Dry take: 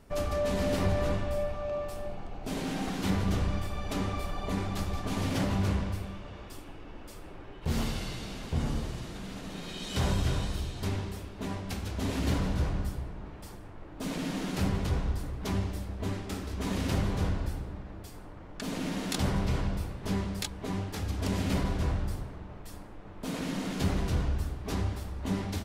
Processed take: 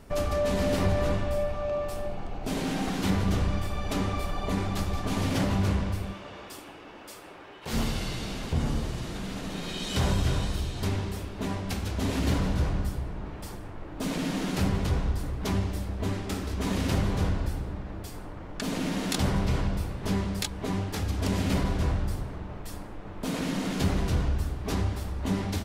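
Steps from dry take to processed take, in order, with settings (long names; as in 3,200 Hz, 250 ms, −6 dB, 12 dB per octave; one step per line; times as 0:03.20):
0:06.12–0:07.72: high-pass filter 300 Hz → 790 Hz 6 dB per octave
in parallel at −2 dB: downward compressor, threshold −37 dBFS, peak gain reduction 13.5 dB
on the sum: level +1 dB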